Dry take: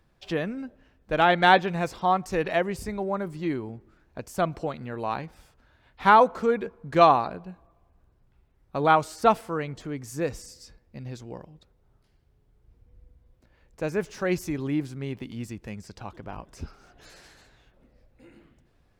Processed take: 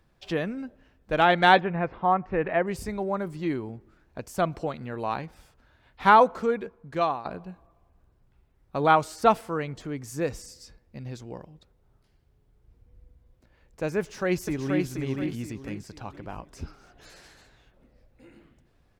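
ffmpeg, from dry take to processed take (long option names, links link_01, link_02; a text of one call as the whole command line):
ffmpeg -i in.wav -filter_complex "[0:a]asplit=3[link_01][link_02][link_03];[link_01]afade=type=out:start_time=1.59:duration=0.02[link_04];[link_02]lowpass=frequency=2300:width=0.5412,lowpass=frequency=2300:width=1.3066,afade=type=in:start_time=1.59:duration=0.02,afade=type=out:start_time=2.66:duration=0.02[link_05];[link_03]afade=type=in:start_time=2.66:duration=0.02[link_06];[link_04][link_05][link_06]amix=inputs=3:normalize=0,asplit=2[link_07][link_08];[link_08]afade=type=in:start_time=13.99:duration=0.01,afade=type=out:start_time=14.87:duration=0.01,aecho=0:1:480|960|1440|1920:0.630957|0.220835|0.0772923|0.0270523[link_09];[link_07][link_09]amix=inputs=2:normalize=0,asplit=2[link_10][link_11];[link_10]atrim=end=7.25,asetpts=PTS-STARTPTS,afade=type=out:start_time=6.22:duration=1.03:silence=0.211349[link_12];[link_11]atrim=start=7.25,asetpts=PTS-STARTPTS,afade=type=in:duration=0.004:curve=hsin:silence=0.211349[link_13];[link_12][link_13]concat=n=2:v=0:a=1" out.wav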